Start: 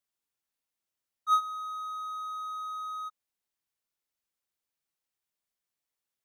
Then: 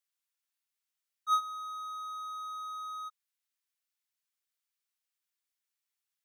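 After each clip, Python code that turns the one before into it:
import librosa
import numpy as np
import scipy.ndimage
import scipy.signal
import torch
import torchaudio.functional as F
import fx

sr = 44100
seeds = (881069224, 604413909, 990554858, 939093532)

y = scipy.signal.sosfilt(scipy.signal.butter(2, 1300.0, 'highpass', fs=sr, output='sos'), x)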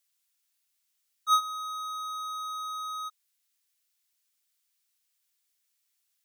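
y = fx.high_shelf(x, sr, hz=2000.0, db=11.0)
y = y * librosa.db_to_amplitude(1.0)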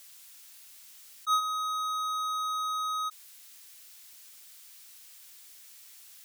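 y = fx.env_flatten(x, sr, amount_pct=50)
y = y * librosa.db_to_amplitude(-4.0)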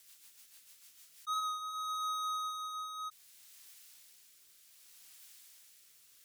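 y = fx.rotary_switch(x, sr, hz=6.7, then_hz=0.65, switch_at_s=0.88)
y = y * librosa.db_to_amplitude(-3.5)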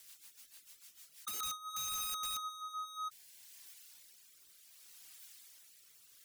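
y = fx.dereverb_blind(x, sr, rt60_s=1.0)
y = (np.mod(10.0 ** (38.5 / 20.0) * y + 1.0, 2.0) - 1.0) / 10.0 ** (38.5 / 20.0)
y = y * librosa.db_to_amplitude(3.0)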